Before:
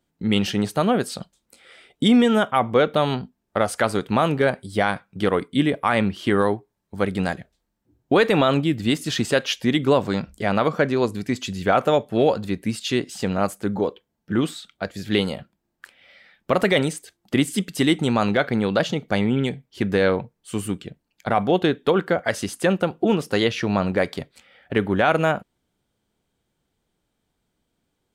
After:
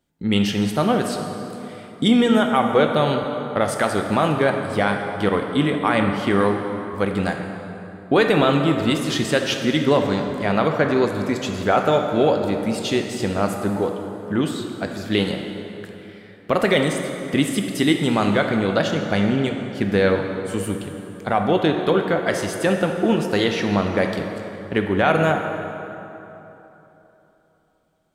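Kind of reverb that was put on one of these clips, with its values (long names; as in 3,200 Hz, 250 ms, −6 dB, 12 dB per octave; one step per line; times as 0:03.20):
dense smooth reverb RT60 3.3 s, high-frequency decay 0.6×, DRR 3.5 dB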